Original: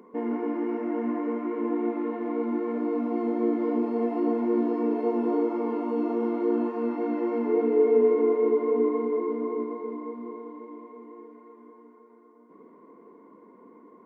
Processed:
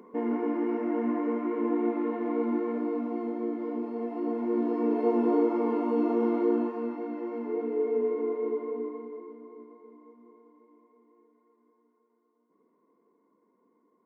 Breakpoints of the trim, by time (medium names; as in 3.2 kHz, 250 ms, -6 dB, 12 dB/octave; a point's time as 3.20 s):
2.51 s 0 dB
3.48 s -7 dB
4.08 s -7 dB
5.10 s +1 dB
6.39 s +1 dB
7.09 s -7.5 dB
8.55 s -7.5 dB
9.43 s -17.5 dB